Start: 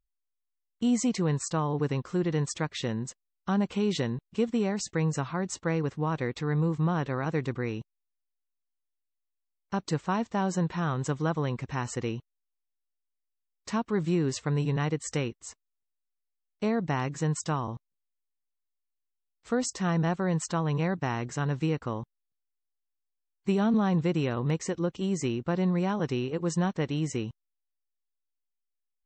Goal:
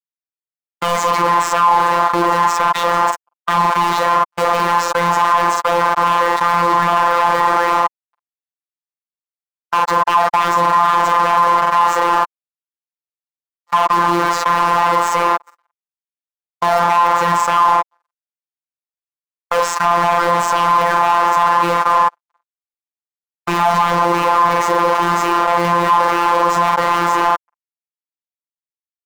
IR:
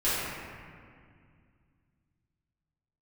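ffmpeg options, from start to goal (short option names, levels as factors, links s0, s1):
-filter_complex "[0:a]asplit=2[s0][s1];[s1]asplit=6[s2][s3][s4][s5][s6][s7];[s2]adelay=428,afreqshift=66,volume=0.112[s8];[s3]adelay=856,afreqshift=132,volume=0.0716[s9];[s4]adelay=1284,afreqshift=198,volume=0.0457[s10];[s5]adelay=1712,afreqshift=264,volume=0.0295[s11];[s6]adelay=2140,afreqshift=330,volume=0.0188[s12];[s7]adelay=2568,afreqshift=396,volume=0.012[s13];[s8][s9][s10][s11][s12][s13]amix=inputs=6:normalize=0[s14];[s0][s14]amix=inputs=2:normalize=0,acrusher=bits=5:mix=0:aa=0.000001,agate=range=0.00141:threshold=0.02:ratio=16:detection=peak,acrossover=split=550|1600[s15][s16][s17];[s16]aeval=exprs='0.1*sin(PI/2*3.55*val(0)/0.1)':c=same[s18];[s15][s18][s17]amix=inputs=3:normalize=0,highshelf=f=2800:g=9.5,asplit=2[s19][s20];[s20]adelay=45,volume=0.376[s21];[s19][s21]amix=inputs=2:normalize=0,asplit=2[s22][s23];[s23]highpass=f=720:p=1,volume=22.4,asoftclip=type=tanh:threshold=0.266[s24];[s22][s24]amix=inputs=2:normalize=0,lowpass=f=2200:p=1,volume=0.501,afftfilt=real='hypot(re,im)*cos(PI*b)':imag='0':win_size=1024:overlap=0.75,equalizer=f=1000:t=o:w=0.8:g=15,alimiter=level_in=2.66:limit=0.891:release=50:level=0:latency=1,volume=0.891"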